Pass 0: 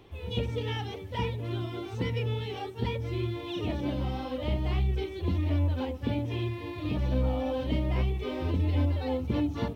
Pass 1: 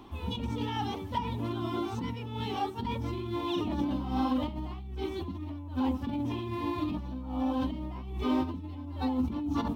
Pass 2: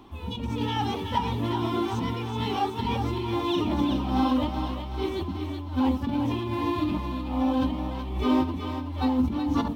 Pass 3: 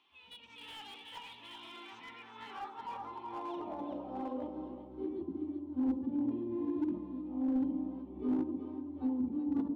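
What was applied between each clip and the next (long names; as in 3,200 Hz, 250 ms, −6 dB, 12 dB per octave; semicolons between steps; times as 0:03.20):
parametric band 460 Hz −3.5 dB 0.54 octaves; compressor whose output falls as the input rises −34 dBFS, ratio −1; graphic EQ with 10 bands 125 Hz −7 dB, 250 Hz +10 dB, 500 Hz −8 dB, 1,000 Hz +10 dB, 2,000 Hz −7 dB
on a send: feedback echo with a high-pass in the loop 375 ms, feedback 57%, high-pass 570 Hz, level −6 dB; on the sum: automatic gain control gain up to 5.5 dB
band-pass filter sweep 2,800 Hz → 300 Hz, 0:01.65–0:04.96; delay with a band-pass on its return 69 ms, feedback 73%, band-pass 430 Hz, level −8.5 dB; slew-rate limiting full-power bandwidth 25 Hz; level −6 dB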